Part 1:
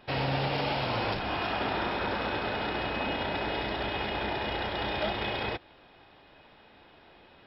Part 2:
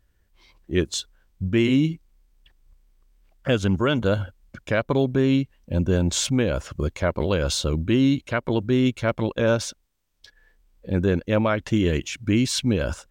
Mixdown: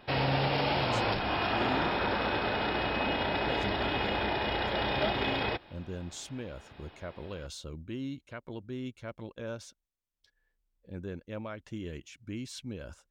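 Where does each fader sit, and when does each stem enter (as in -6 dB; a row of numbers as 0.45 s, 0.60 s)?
+1.0 dB, -18.5 dB; 0.00 s, 0.00 s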